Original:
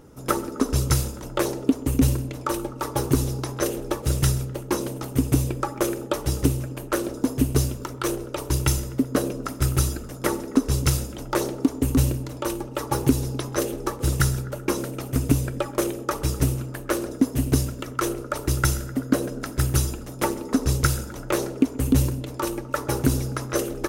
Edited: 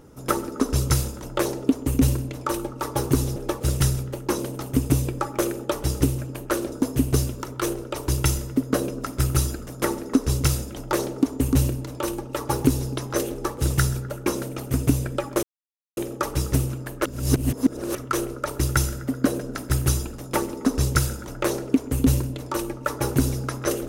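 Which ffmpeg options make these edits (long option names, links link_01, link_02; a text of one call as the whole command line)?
ffmpeg -i in.wav -filter_complex "[0:a]asplit=5[link_01][link_02][link_03][link_04][link_05];[link_01]atrim=end=3.362[link_06];[link_02]atrim=start=3.778:end=15.85,asetpts=PTS-STARTPTS,afade=type=out:start_time=12.068:duration=0.004:curve=hsin,apad=pad_dur=0.54[link_07];[link_03]atrim=start=15.85:end=16.932,asetpts=PTS-STARTPTS,afade=type=in:duration=0.004:curve=hsin[link_08];[link_04]atrim=start=16.928:end=17.832,asetpts=PTS-STARTPTS,areverse[link_09];[link_05]atrim=start=17.828[link_10];[link_07][link_08]concat=n=2:v=0:a=1[link_11];[link_06][link_11]acrossfade=duration=0.004:curve1=hsin:curve2=hsin[link_12];[link_12][link_09]acrossfade=duration=0.004:curve1=hsin:curve2=hsin[link_13];[link_13][link_10]acrossfade=duration=0.004:curve1=hsin:curve2=hsin" out.wav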